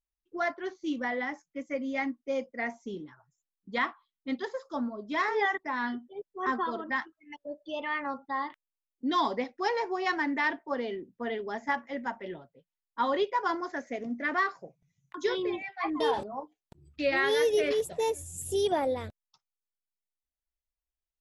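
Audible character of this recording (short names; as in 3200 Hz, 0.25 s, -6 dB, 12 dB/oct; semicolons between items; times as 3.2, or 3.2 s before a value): noise floor -91 dBFS; spectral tilt -1.5 dB/oct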